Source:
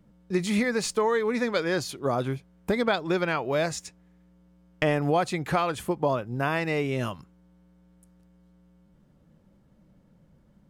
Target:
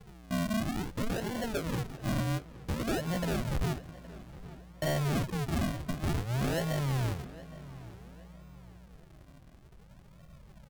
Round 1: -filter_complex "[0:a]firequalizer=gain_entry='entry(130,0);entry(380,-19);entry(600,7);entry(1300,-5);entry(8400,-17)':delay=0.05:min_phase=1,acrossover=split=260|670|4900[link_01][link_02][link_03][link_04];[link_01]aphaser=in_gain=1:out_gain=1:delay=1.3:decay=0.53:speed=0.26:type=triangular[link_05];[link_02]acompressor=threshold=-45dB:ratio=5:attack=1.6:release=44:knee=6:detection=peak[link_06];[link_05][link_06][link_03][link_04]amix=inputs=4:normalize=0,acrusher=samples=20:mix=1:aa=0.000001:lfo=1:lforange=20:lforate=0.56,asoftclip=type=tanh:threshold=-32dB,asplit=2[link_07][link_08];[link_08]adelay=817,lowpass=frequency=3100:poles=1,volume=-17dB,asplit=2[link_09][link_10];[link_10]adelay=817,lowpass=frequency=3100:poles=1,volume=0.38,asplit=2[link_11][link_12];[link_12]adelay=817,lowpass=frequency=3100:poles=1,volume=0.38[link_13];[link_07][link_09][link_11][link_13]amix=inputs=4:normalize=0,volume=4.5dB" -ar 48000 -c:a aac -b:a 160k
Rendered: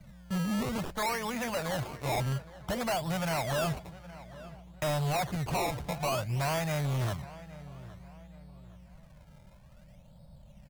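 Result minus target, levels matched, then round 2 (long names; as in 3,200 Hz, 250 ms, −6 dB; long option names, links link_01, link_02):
sample-and-hold swept by an LFO: distortion −11 dB; downward compressor: peak gain reduction −6 dB
-filter_complex "[0:a]firequalizer=gain_entry='entry(130,0);entry(380,-19);entry(600,7);entry(1300,-5);entry(8400,-17)':delay=0.05:min_phase=1,acrossover=split=260|670|4900[link_01][link_02][link_03][link_04];[link_01]aphaser=in_gain=1:out_gain=1:delay=1.3:decay=0.53:speed=0.26:type=triangular[link_05];[link_02]acompressor=threshold=-52.5dB:ratio=5:attack=1.6:release=44:knee=6:detection=peak[link_06];[link_05][link_06][link_03][link_04]amix=inputs=4:normalize=0,acrusher=samples=69:mix=1:aa=0.000001:lfo=1:lforange=69:lforate=0.56,asoftclip=type=tanh:threshold=-32dB,asplit=2[link_07][link_08];[link_08]adelay=817,lowpass=frequency=3100:poles=1,volume=-17dB,asplit=2[link_09][link_10];[link_10]adelay=817,lowpass=frequency=3100:poles=1,volume=0.38,asplit=2[link_11][link_12];[link_12]adelay=817,lowpass=frequency=3100:poles=1,volume=0.38[link_13];[link_07][link_09][link_11][link_13]amix=inputs=4:normalize=0,volume=4.5dB" -ar 48000 -c:a aac -b:a 160k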